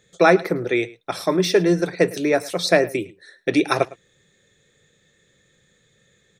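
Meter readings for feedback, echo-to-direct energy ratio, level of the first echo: no steady repeat, -20.5 dB, -20.5 dB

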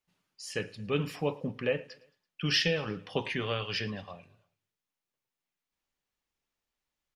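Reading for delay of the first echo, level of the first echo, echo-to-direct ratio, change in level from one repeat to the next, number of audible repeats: 0.111 s, -23.0 dB, -21.5 dB, -5.5 dB, 3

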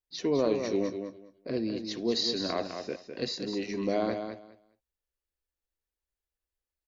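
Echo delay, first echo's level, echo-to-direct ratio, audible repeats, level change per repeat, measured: 0.205 s, -7.5 dB, -7.5 dB, 2, -15.0 dB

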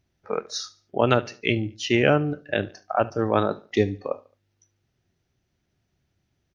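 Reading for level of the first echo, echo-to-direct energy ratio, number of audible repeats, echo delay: -21.0 dB, -20.5 dB, 2, 72 ms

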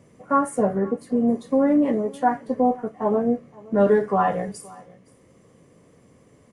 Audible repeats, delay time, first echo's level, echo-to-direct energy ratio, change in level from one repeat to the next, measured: 1, 0.52 s, -23.0 dB, -23.0 dB, no steady repeat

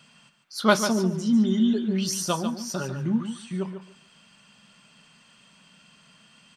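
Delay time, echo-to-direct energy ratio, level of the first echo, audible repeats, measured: 0.145 s, -9.0 dB, -9.0 dB, 2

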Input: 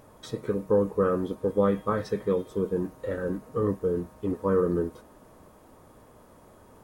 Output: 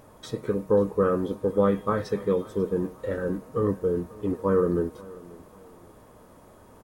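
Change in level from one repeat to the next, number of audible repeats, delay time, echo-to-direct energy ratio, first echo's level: -9.0 dB, 2, 0.539 s, -20.5 dB, -21.0 dB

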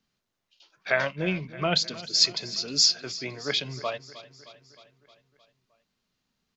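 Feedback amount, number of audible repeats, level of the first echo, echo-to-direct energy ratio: 60%, 5, -17.0 dB, -15.0 dB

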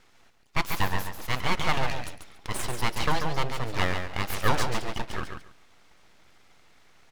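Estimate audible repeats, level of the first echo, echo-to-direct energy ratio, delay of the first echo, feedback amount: 2, -6.5 dB, -6.5 dB, 0.14 s, 17%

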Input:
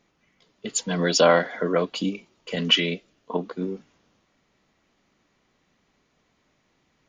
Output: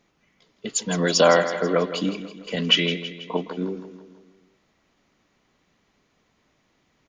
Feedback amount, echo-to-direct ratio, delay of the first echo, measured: 51%, -10.5 dB, 0.163 s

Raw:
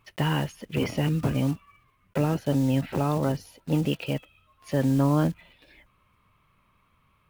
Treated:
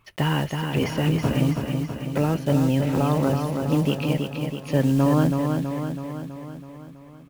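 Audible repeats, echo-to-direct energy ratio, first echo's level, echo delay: 7, -3.0 dB, -5.0 dB, 0.326 s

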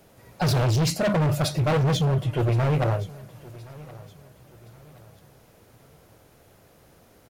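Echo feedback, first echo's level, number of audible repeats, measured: 37%, -20.5 dB, 2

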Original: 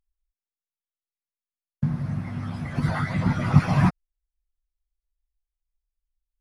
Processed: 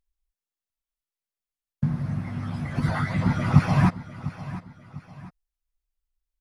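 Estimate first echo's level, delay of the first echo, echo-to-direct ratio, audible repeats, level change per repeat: -15.0 dB, 0.7 s, -14.5 dB, 2, -8.0 dB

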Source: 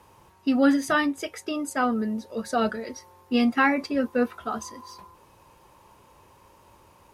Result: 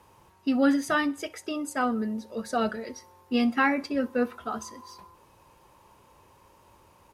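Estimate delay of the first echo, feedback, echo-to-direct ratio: 64 ms, 42%, -22.0 dB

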